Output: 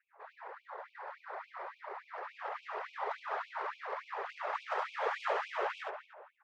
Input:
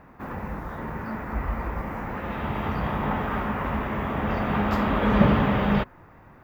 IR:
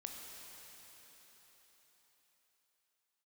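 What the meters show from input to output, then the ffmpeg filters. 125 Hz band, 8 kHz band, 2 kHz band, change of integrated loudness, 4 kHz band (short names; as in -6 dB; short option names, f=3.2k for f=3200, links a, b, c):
under -40 dB, n/a, -9.5 dB, -13.5 dB, -10.5 dB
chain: -filter_complex "[0:a]adynamicsmooth=sensitivity=1.5:basefreq=1.6k,asplit=2[a][b];[b]aecho=0:1:70:0.668[c];[a][c]amix=inputs=2:normalize=0,afftfilt=real='hypot(re,im)*cos(2*PI*random(0))':imag='hypot(re,im)*sin(2*PI*random(1))':win_size=512:overlap=0.75,asplit=2[d][e];[e]adelay=237,lowpass=f=1.6k:p=1,volume=-8dB,asplit=2[f][g];[g]adelay=237,lowpass=f=1.6k:p=1,volume=0.34,asplit=2[h][i];[i]adelay=237,lowpass=f=1.6k:p=1,volume=0.34,asplit=2[j][k];[k]adelay=237,lowpass=f=1.6k:p=1,volume=0.34[l];[f][h][j][l]amix=inputs=4:normalize=0[m];[d][m]amix=inputs=2:normalize=0,afftfilt=real='re*gte(b*sr/1024,360*pow(2300/360,0.5+0.5*sin(2*PI*3.5*pts/sr)))':imag='im*gte(b*sr/1024,360*pow(2300/360,0.5+0.5*sin(2*PI*3.5*pts/sr)))':win_size=1024:overlap=0.75,volume=-1.5dB"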